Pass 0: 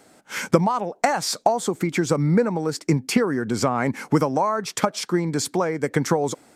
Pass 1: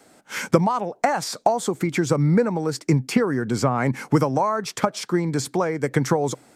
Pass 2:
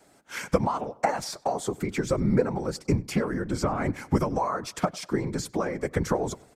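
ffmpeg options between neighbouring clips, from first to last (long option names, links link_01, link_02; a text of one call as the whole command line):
ffmpeg -i in.wav -filter_complex "[0:a]adynamicequalizer=threshold=0.00708:dfrequency=130:dqfactor=5.8:tfrequency=130:tqfactor=5.8:attack=5:release=100:ratio=0.375:range=3.5:mode=boostabove:tftype=bell,acrossover=split=710|2200[link_01][link_02][link_03];[link_03]alimiter=limit=-20dB:level=0:latency=1:release=188[link_04];[link_01][link_02][link_04]amix=inputs=3:normalize=0" out.wav
ffmpeg -i in.wav -filter_complex "[0:a]afftfilt=real='hypot(re,im)*cos(2*PI*random(0))':imag='hypot(re,im)*sin(2*PI*random(1))':win_size=512:overlap=0.75,asplit=2[link_01][link_02];[link_02]adelay=98,lowpass=frequency=3500:poles=1,volume=-22.5dB,asplit=2[link_03][link_04];[link_04]adelay=98,lowpass=frequency=3500:poles=1,volume=0.47,asplit=2[link_05][link_06];[link_06]adelay=98,lowpass=frequency=3500:poles=1,volume=0.47[link_07];[link_01][link_03][link_05][link_07]amix=inputs=4:normalize=0" out.wav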